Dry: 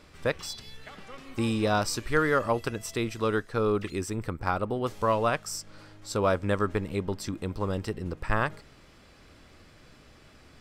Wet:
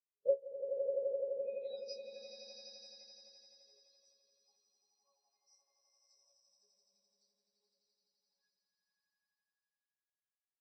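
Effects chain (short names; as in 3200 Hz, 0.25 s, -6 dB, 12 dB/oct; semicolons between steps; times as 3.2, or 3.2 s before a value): band-pass sweep 510 Hz -> 6900 Hz, 1.08–1.9; 5.33–6.23 whine 2100 Hz -54 dBFS; resonator bank C#3 sus4, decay 0.23 s; swelling echo 85 ms, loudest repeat 8, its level -3 dB; reverb RT60 1.0 s, pre-delay 3 ms, DRR 11 dB; spectral expander 2.5:1; gain +6.5 dB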